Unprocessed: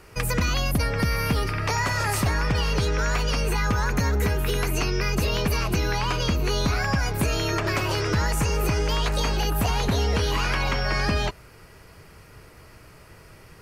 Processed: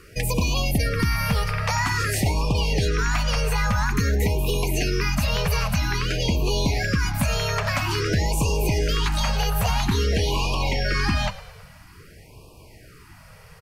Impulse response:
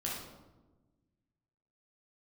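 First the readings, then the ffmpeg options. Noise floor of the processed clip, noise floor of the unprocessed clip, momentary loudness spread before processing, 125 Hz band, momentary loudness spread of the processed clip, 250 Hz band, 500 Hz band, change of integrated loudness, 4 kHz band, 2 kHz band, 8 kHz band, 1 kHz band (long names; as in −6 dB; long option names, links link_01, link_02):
−48 dBFS, −49 dBFS, 1 LU, +1.5 dB, 2 LU, +1.0 dB, 0.0 dB, +1.0 dB, +1.5 dB, +0.5 dB, +1.5 dB, 0.0 dB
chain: -filter_complex "[0:a]asplit=6[link_01][link_02][link_03][link_04][link_05][link_06];[link_02]adelay=109,afreqshift=-46,volume=-17dB[link_07];[link_03]adelay=218,afreqshift=-92,volume=-22dB[link_08];[link_04]adelay=327,afreqshift=-138,volume=-27.1dB[link_09];[link_05]adelay=436,afreqshift=-184,volume=-32.1dB[link_10];[link_06]adelay=545,afreqshift=-230,volume=-37.1dB[link_11];[link_01][link_07][link_08][link_09][link_10][link_11]amix=inputs=6:normalize=0,afftfilt=real='re*(1-between(b*sr/1024,280*pow(1700/280,0.5+0.5*sin(2*PI*0.5*pts/sr))/1.41,280*pow(1700/280,0.5+0.5*sin(2*PI*0.5*pts/sr))*1.41))':imag='im*(1-between(b*sr/1024,280*pow(1700/280,0.5+0.5*sin(2*PI*0.5*pts/sr))/1.41,280*pow(1700/280,0.5+0.5*sin(2*PI*0.5*pts/sr))*1.41))':win_size=1024:overlap=0.75,volume=1.5dB"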